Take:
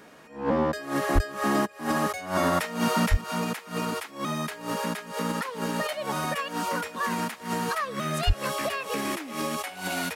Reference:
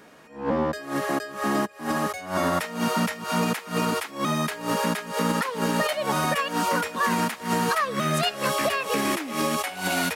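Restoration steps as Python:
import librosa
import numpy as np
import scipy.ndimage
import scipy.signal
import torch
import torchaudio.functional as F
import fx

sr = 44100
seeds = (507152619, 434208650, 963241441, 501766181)

y = fx.fix_declip(x, sr, threshold_db=-12.5)
y = fx.highpass(y, sr, hz=140.0, slope=24, at=(1.14, 1.26), fade=0.02)
y = fx.highpass(y, sr, hz=140.0, slope=24, at=(3.1, 3.22), fade=0.02)
y = fx.highpass(y, sr, hz=140.0, slope=24, at=(8.26, 8.38), fade=0.02)
y = fx.gain(y, sr, db=fx.steps((0.0, 0.0), (3.21, 5.0)))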